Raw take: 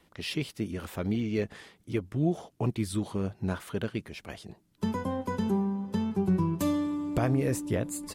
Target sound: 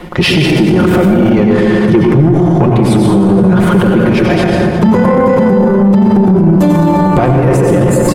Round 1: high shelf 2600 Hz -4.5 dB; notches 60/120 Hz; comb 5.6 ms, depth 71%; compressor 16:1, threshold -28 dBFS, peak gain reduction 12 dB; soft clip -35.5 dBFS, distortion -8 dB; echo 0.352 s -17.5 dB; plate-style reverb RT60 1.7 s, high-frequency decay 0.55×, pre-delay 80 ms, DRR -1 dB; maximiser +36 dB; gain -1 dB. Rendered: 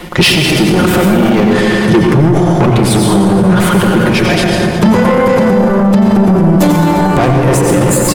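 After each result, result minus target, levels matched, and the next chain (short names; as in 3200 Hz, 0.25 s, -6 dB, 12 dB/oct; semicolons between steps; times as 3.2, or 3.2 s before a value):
4000 Hz band +5.5 dB; soft clip: distortion +7 dB
high shelf 2600 Hz -15.5 dB; notches 60/120 Hz; comb 5.6 ms, depth 71%; compressor 16:1, threshold -28 dBFS, peak gain reduction 12 dB; soft clip -35.5 dBFS, distortion -8 dB; echo 0.352 s -17.5 dB; plate-style reverb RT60 1.7 s, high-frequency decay 0.55×, pre-delay 80 ms, DRR -1 dB; maximiser +36 dB; gain -1 dB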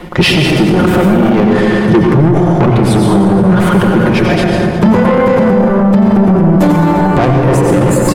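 soft clip: distortion +7 dB
high shelf 2600 Hz -15.5 dB; notches 60/120 Hz; comb 5.6 ms, depth 71%; compressor 16:1, threshold -28 dBFS, peak gain reduction 12 dB; soft clip -28 dBFS, distortion -15 dB; echo 0.352 s -17.5 dB; plate-style reverb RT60 1.7 s, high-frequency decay 0.55×, pre-delay 80 ms, DRR -1 dB; maximiser +36 dB; gain -1 dB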